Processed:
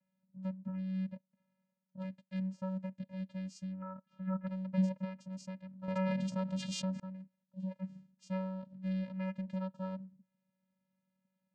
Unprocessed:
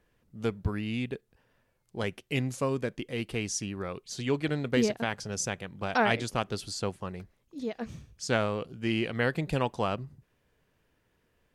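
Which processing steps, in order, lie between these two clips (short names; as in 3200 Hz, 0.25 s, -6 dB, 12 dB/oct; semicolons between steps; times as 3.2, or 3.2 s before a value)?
vocoder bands 8, square 188 Hz; 3.82–4.47 synth low-pass 1300 Hz, resonance Q 5.2; 5.88–7 fast leveller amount 70%; gain -7 dB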